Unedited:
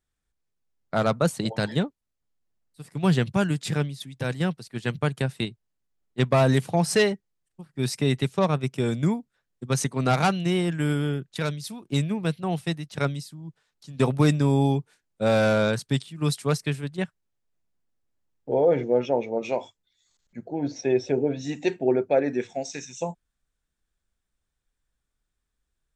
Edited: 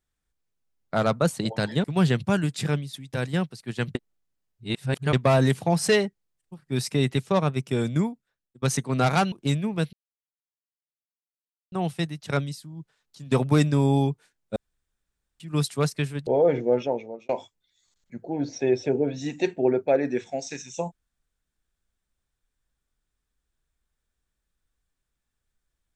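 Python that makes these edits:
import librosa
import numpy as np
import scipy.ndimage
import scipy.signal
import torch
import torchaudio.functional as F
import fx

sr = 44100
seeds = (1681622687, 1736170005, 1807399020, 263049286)

y = fx.edit(x, sr, fx.cut(start_s=1.84, length_s=1.07),
    fx.reverse_span(start_s=5.02, length_s=1.18),
    fx.fade_out_to(start_s=9.02, length_s=0.67, floor_db=-23.0),
    fx.cut(start_s=10.39, length_s=1.4),
    fx.insert_silence(at_s=12.4, length_s=1.79),
    fx.room_tone_fill(start_s=15.24, length_s=0.84),
    fx.cut(start_s=16.95, length_s=1.55),
    fx.fade_out_span(start_s=19.0, length_s=0.52), tone=tone)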